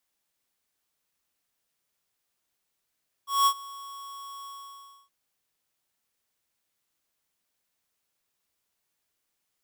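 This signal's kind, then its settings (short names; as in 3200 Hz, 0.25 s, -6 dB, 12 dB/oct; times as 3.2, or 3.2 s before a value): ADSR square 1110 Hz, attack 0.193 s, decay 70 ms, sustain -22 dB, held 1.19 s, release 0.633 s -19.5 dBFS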